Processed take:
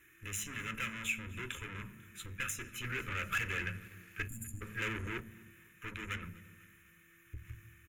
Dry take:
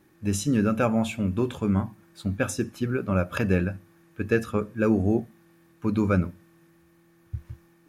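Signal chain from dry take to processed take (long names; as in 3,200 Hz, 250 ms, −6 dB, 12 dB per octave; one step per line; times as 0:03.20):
tube saturation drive 32 dB, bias 0.65
guitar amp tone stack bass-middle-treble 5-5-5
phaser with its sweep stopped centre 1,900 Hz, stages 4
downward compressor 2.5 to 1, threshold −55 dBFS, peak gain reduction 7.5 dB
parametric band 2,100 Hz +2.5 dB
convolution reverb RT60 1.2 s, pre-delay 3 ms, DRR 18 dB
0:04.28–0:04.61: time-frequency box erased 310–6,800 Hz
repeating echo 248 ms, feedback 57%, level −22.5 dB
0:02.84–0:05.21: leveller curve on the samples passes 1
level +14.5 dB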